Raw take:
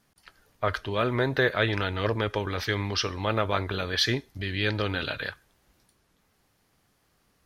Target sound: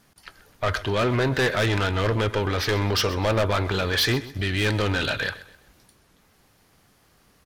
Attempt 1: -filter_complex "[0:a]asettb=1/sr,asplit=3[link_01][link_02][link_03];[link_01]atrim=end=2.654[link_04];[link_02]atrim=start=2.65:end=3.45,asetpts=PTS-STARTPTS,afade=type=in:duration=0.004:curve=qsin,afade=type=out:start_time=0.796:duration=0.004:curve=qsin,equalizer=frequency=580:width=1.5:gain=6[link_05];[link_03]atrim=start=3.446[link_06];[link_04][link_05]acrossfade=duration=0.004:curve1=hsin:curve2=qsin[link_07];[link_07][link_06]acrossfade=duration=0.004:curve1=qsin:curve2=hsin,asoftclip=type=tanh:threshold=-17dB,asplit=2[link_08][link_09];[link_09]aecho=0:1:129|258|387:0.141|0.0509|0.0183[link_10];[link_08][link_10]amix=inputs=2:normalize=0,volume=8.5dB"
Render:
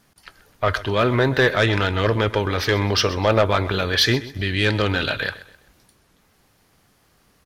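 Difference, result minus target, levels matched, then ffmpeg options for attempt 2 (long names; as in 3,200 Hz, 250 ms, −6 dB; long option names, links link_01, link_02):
soft clipping: distortion −8 dB
-filter_complex "[0:a]asettb=1/sr,asplit=3[link_01][link_02][link_03];[link_01]atrim=end=2.654[link_04];[link_02]atrim=start=2.65:end=3.45,asetpts=PTS-STARTPTS,afade=type=in:duration=0.004:curve=qsin,afade=type=out:start_time=0.796:duration=0.004:curve=qsin,equalizer=frequency=580:width=1.5:gain=6[link_05];[link_03]atrim=start=3.446[link_06];[link_04][link_05]acrossfade=duration=0.004:curve1=hsin:curve2=qsin[link_07];[link_07][link_06]acrossfade=duration=0.004:curve1=qsin:curve2=hsin,asoftclip=type=tanh:threshold=-26.5dB,asplit=2[link_08][link_09];[link_09]aecho=0:1:129|258|387:0.141|0.0509|0.0183[link_10];[link_08][link_10]amix=inputs=2:normalize=0,volume=8.5dB"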